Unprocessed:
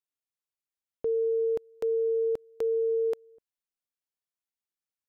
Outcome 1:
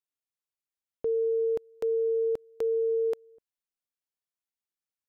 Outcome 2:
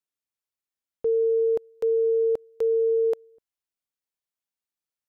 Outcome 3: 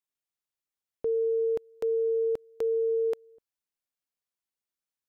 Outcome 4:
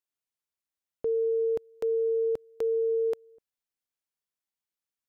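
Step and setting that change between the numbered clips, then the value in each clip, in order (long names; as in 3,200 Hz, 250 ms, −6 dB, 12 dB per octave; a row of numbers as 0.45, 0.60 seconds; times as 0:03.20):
dynamic equaliser, frequency: 9,500, 600, 2,300, 100 Hertz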